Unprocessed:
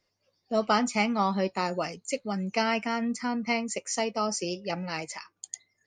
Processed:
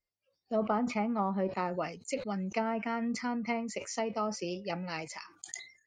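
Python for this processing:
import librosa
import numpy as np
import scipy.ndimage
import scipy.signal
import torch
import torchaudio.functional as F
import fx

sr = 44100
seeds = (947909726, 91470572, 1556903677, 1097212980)

y = fx.noise_reduce_blind(x, sr, reduce_db=15)
y = fx.env_lowpass_down(y, sr, base_hz=980.0, full_db=-21.5)
y = fx.sustainer(y, sr, db_per_s=120.0)
y = y * 10.0 ** (-4.0 / 20.0)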